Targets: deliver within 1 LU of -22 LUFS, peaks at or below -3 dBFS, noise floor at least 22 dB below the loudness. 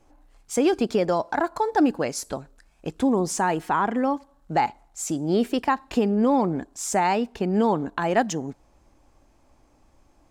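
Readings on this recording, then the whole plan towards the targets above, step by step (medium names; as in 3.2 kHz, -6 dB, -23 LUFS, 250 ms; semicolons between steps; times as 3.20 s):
loudness -24.5 LUFS; peak level -7.5 dBFS; loudness target -22.0 LUFS
-> trim +2.5 dB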